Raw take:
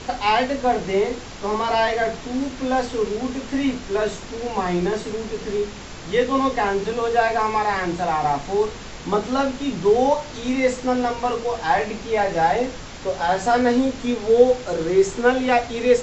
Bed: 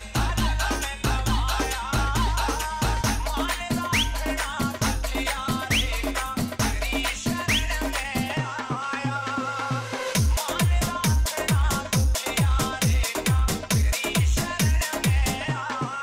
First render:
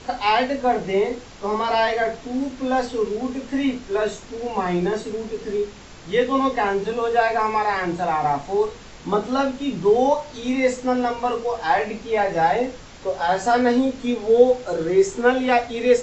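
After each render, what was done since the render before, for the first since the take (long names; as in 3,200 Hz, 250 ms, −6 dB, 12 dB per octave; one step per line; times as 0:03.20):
noise reduction from a noise print 6 dB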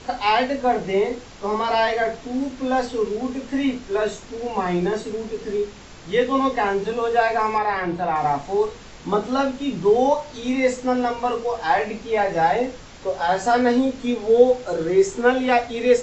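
0:07.58–0:08.16: high-frequency loss of the air 140 metres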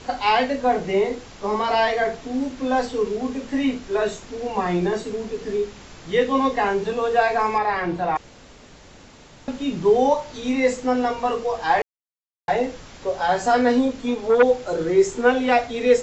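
0:08.17–0:09.48: fill with room tone
0:11.82–0:12.48: silence
0:13.88–0:14.43: saturating transformer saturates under 860 Hz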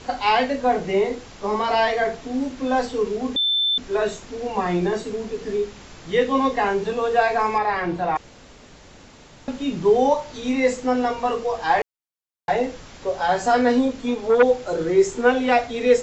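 0:03.36–0:03.78: beep over 3,540 Hz −17.5 dBFS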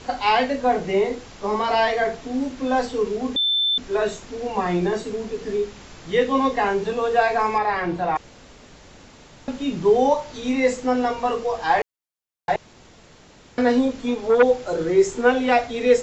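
0:12.56–0:13.58: fill with room tone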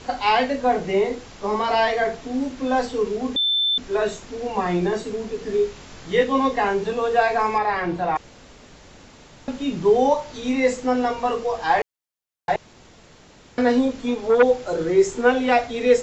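0:05.51–0:06.24: double-tracking delay 22 ms −5 dB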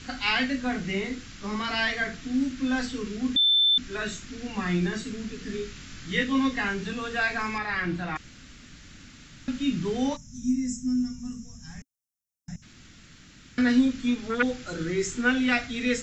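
0:10.16–0:12.63: gain on a spectral selection 270–5,100 Hz −25 dB
flat-topped bell 630 Hz −15.5 dB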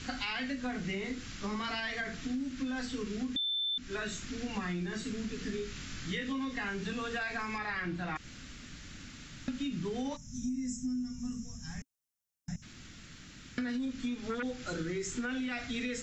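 brickwall limiter −19.5 dBFS, peak gain reduction 8 dB
downward compressor, threshold −33 dBFS, peak gain reduction 10.5 dB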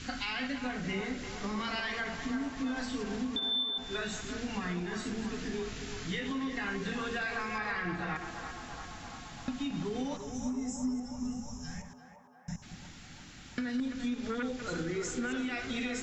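delay that plays each chunk backwards 117 ms, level −9 dB
on a send: feedback echo with a band-pass in the loop 341 ms, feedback 83%, band-pass 830 Hz, level −6 dB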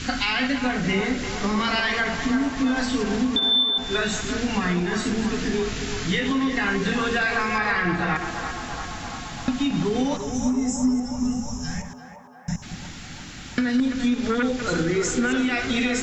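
level +12 dB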